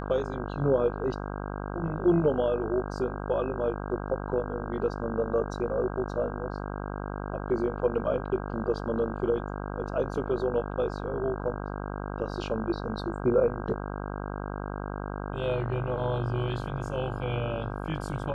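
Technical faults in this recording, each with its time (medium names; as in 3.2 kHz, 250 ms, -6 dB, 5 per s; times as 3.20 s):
buzz 50 Hz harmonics 32 -35 dBFS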